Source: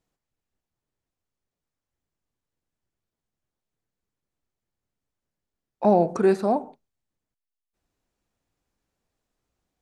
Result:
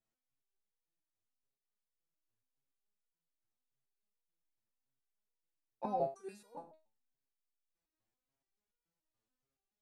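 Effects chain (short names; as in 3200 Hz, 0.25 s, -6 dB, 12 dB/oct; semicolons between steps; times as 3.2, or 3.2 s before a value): 6.08–6.55 pre-emphasis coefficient 0.9; stepped resonator 7 Hz 110–480 Hz; gain -1 dB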